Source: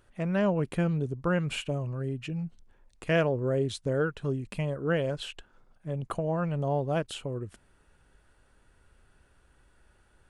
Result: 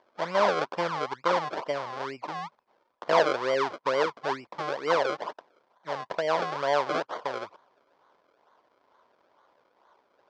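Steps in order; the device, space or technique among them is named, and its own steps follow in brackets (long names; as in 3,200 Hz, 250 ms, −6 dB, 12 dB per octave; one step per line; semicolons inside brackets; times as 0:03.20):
circuit-bent sampling toy (sample-and-hold swept by an LFO 33×, swing 100% 2.2 Hz; loudspeaker in its box 550–4,600 Hz, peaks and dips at 580 Hz +3 dB, 1,000 Hz +8 dB, 1,900 Hz −3 dB, 2,700 Hz −7 dB, 3,900 Hz −5 dB)
level +5.5 dB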